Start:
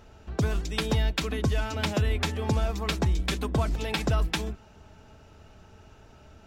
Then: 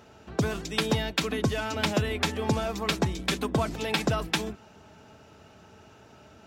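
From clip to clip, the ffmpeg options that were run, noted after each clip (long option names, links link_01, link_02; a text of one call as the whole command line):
ffmpeg -i in.wav -af "highpass=130,volume=2.5dB" out.wav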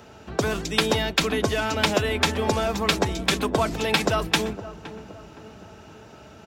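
ffmpeg -i in.wav -filter_complex "[0:a]acrossover=split=330|1500|3400[link_01][link_02][link_03][link_04];[link_01]volume=33dB,asoftclip=hard,volume=-33dB[link_05];[link_05][link_02][link_03][link_04]amix=inputs=4:normalize=0,asplit=2[link_06][link_07];[link_07]adelay=516,lowpass=frequency=950:poles=1,volume=-13dB,asplit=2[link_08][link_09];[link_09]adelay=516,lowpass=frequency=950:poles=1,volume=0.53,asplit=2[link_10][link_11];[link_11]adelay=516,lowpass=frequency=950:poles=1,volume=0.53,asplit=2[link_12][link_13];[link_13]adelay=516,lowpass=frequency=950:poles=1,volume=0.53,asplit=2[link_14][link_15];[link_15]adelay=516,lowpass=frequency=950:poles=1,volume=0.53[link_16];[link_06][link_08][link_10][link_12][link_14][link_16]amix=inputs=6:normalize=0,volume=6dB" out.wav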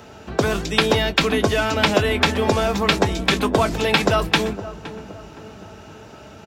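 ffmpeg -i in.wav -filter_complex "[0:a]asplit=2[link_01][link_02];[link_02]adelay=20,volume=-12.5dB[link_03];[link_01][link_03]amix=inputs=2:normalize=0,acrossover=split=4900[link_04][link_05];[link_05]acompressor=threshold=-38dB:ratio=4:attack=1:release=60[link_06];[link_04][link_06]amix=inputs=2:normalize=0,volume=4.5dB" out.wav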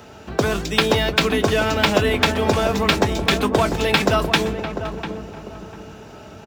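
ffmpeg -i in.wav -filter_complex "[0:a]acrossover=split=3700[link_01][link_02];[link_02]acrusher=bits=2:mode=log:mix=0:aa=0.000001[link_03];[link_01][link_03]amix=inputs=2:normalize=0,asplit=2[link_04][link_05];[link_05]adelay=697,lowpass=frequency=1100:poles=1,volume=-8dB,asplit=2[link_06][link_07];[link_07]adelay=697,lowpass=frequency=1100:poles=1,volume=0.31,asplit=2[link_08][link_09];[link_09]adelay=697,lowpass=frequency=1100:poles=1,volume=0.31,asplit=2[link_10][link_11];[link_11]adelay=697,lowpass=frequency=1100:poles=1,volume=0.31[link_12];[link_04][link_06][link_08][link_10][link_12]amix=inputs=5:normalize=0" out.wav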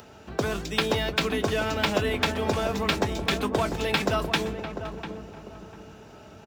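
ffmpeg -i in.wav -af "acompressor=mode=upward:threshold=-39dB:ratio=2.5,volume=-7.5dB" out.wav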